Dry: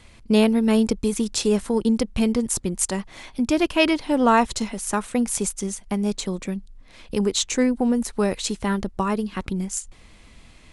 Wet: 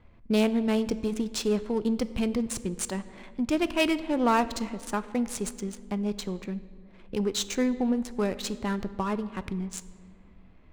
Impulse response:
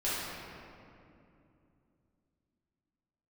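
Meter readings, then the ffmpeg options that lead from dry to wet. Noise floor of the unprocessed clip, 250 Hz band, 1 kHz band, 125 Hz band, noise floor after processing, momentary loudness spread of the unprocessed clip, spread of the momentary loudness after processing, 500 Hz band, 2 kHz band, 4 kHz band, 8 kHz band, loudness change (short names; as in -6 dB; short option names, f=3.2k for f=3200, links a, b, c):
-50 dBFS, -6.0 dB, -6.0 dB, -6.0 dB, -53 dBFS, 10 LU, 10 LU, -6.0 dB, -6.0 dB, -6.0 dB, -9.5 dB, -6.0 dB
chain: -filter_complex "[0:a]adynamicsmooth=sensitivity=7:basefreq=1.3k,aeval=exprs='0.596*(cos(1*acos(clip(val(0)/0.596,-1,1)))-cos(1*PI/2))+0.237*(cos(2*acos(clip(val(0)/0.596,-1,1)))-cos(2*PI/2))+0.237*(cos(4*acos(clip(val(0)/0.596,-1,1)))-cos(4*PI/2))+0.0299*(cos(5*acos(clip(val(0)/0.596,-1,1)))-cos(5*PI/2))+0.0944*(cos(6*acos(clip(val(0)/0.596,-1,1)))-cos(6*PI/2))':c=same,asplit=2[a][b];[1:a]atrim=start_sample=2205,asetrate=74970,aresample=44100[c];[b][c]afir=irnorm=-1:irlink=0,volume=-17dB[d];[a][d]amix=inputs=2:normalize=0,volume=-8dB"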